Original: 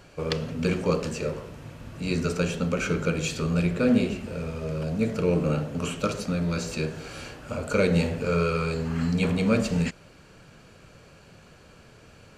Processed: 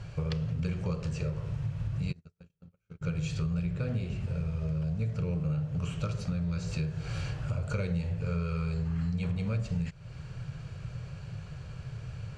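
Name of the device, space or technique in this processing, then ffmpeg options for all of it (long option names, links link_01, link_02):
jukebox: -filter_complex "[0:a]lowpass=7200,lowshelf=frequency=180:width_type=q:width=3:gain=11,acompressor=threshold=-30dB:ratio=5,asplit=3[link_01][link_02][link_03];[link_01]afade=type=out:start_time=2.11:duration=0.02[link_04];[link_02]agate=range=-50dB:threshold=-26dB:ratio=16:detection=peak,afade=type=in:start_time=2.11:duration=0.02,afade=type=out:start_time=3.01:duration=0.02[link_05];[link_03]afade=type=in:start_time=3.01:duration=0.02[link_06];[link_04][link_05][link_06]amix=inputs=3:normalize=0"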